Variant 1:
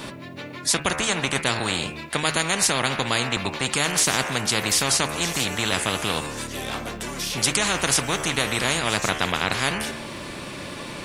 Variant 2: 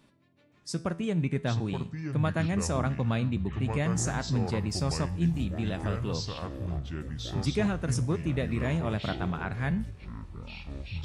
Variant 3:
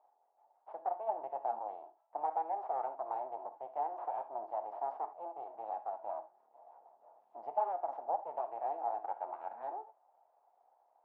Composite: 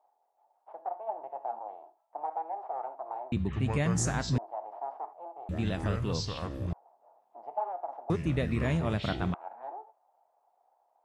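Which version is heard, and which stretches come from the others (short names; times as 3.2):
3
3.32–4.38 from 2
5.49–6.73 from 2
8.1–9.34 from 2
not used: 1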